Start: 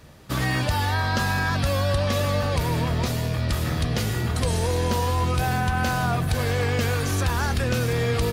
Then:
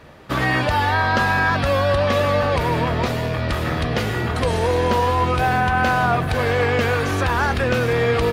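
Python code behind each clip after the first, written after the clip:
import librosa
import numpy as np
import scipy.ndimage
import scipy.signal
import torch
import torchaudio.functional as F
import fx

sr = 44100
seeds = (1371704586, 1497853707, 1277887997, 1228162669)

y = fx.bass_treble(x, sr, bass_db=-8, treble_db=-14)
y = y * 10.0 ** (8.0 / 20.0)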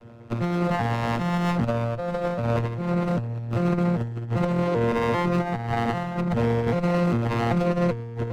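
y = fx.vocoder_arp(x, sr, chord='bare fifth', root=46, every_ms=395)
y = fx.over_compress(y, sr, threshold_db=-23.0, ratio=-0.5)
y = fx.running_max(y, sr, window=17)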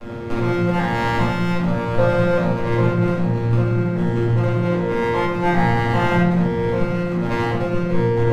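y = fx.over_compress(x, sr, threshold_db=-31.0, ratio=-1.0)
y = fx.room_shoebox(y, sr, seeds[0], volume_m3=230.0, walls='mixed', distance_m=2.3)
y = y * 10.0 ** (4.5 / 20.0)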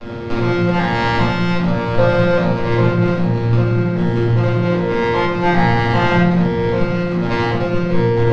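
y = fx.lowpass_res(x, sr, hz=4800.0, q=1.7)
y = y * 10.0 ** (3.0 / 20.0)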